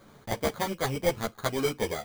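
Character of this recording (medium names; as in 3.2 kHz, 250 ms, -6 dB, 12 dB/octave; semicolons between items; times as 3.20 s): aliases and images of a low sample rate 2.7 kHz, jitter 0%; a shimmering, thickened sound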